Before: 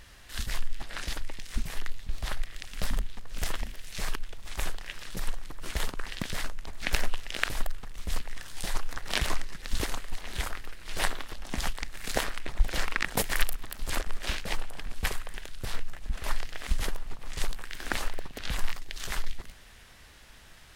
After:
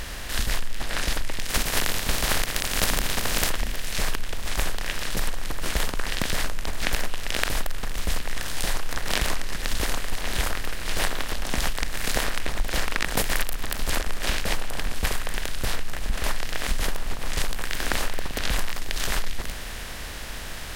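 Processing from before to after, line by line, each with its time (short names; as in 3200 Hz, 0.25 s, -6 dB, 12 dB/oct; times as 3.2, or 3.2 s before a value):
1.49–3.48 spectral contrast lowered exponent 0.56
whole clip: per-bin compression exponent 0.6; compressor, threshold -21 dBFS; gain +3 dB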